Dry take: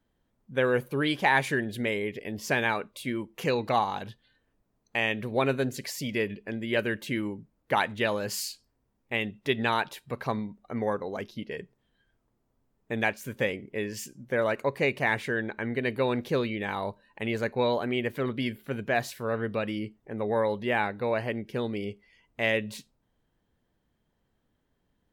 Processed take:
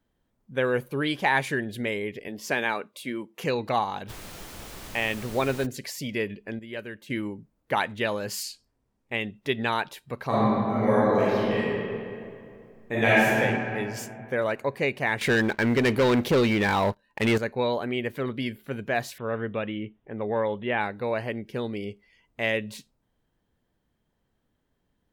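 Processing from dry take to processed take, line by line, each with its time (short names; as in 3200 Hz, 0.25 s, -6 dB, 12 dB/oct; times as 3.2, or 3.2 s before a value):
2.28–3.43 HPF 190 Hz
4.08–5.65 added noise pink -41 dBFS
6.59–7.1 gain -9 dB
8.43–9.35 LPF 12000 Hz
10.27–13.36 reverb throw, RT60 2.5 s, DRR -10 dB
15.21–17.38 sample leveller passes 3
19.18–20.81 careless resampling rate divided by 6×, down none, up filtered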